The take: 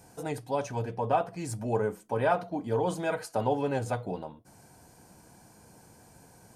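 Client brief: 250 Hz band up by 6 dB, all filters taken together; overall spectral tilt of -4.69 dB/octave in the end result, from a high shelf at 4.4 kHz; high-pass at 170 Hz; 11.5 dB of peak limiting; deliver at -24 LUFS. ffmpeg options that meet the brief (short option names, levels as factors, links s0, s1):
-af "highpass=170,equalizer=f=250:t=o:g=8.5,highshelf=f=4400:g=-6,volume=3.35,alimiter=limit=0.211:level=0:latency=1"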